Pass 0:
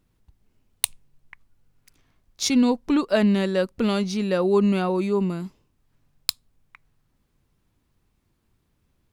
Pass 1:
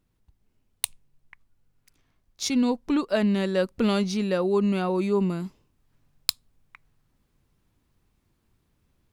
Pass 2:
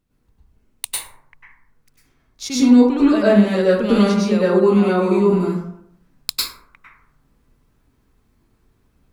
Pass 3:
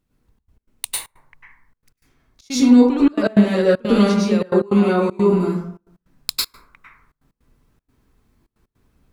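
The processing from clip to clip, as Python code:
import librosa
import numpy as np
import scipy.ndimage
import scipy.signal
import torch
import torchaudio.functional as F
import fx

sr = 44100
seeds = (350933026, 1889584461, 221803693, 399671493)

y1 = fx.rider(x, sr, range_db=10, speed_s=0.5)
y1 = y1 * 10.0 ** (-1.5 / 20.0)
y2 = fx.rev_plate(y1, sr, seeds[0], rt60_s=0.7, hf_ratio=0.4, predelay_ms=90, drr_db=-8.5)
y2 = y2 * 10.0 ** (-1.0 / 20.0)
y3 = fx.step_gate(y2, sr, bpm=156, pattern='xxxx.x.xxxx.xx', floor_db=-24.0, edge_ms=4.5)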